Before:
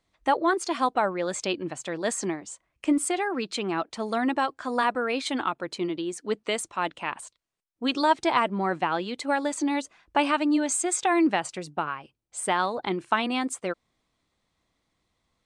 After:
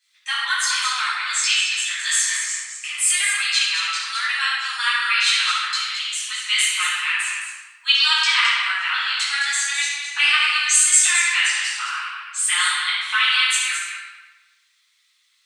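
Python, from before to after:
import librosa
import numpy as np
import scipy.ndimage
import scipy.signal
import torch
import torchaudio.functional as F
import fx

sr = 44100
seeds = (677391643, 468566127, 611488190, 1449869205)

p1 = fx.octave_divider(x, sr, octaves=2, level_db=4.0)
p2 = scipy.signal.sosfilt(scipy.signal.bessel(8, 2600.0, 'highpass', norm='mag', fs=sr, output='sos'), p1)
p3 = fx.dynamic_eq(p2, sr, hz=9200.0, q=0.86, threshold_db=-44.0, ratio=4.0, max_db=-3)
p4 = p3 + fx.echo_single(p3, sr, ms=215, db=-7.5, dry=0)
p5 = fx.room_shoebox(p4, sr, seeds[0], volume_m3=980.0, walls='mixed', distance_m=8.8)
y = F.gain(torch.from_numpy(p5), 5.5).numpy()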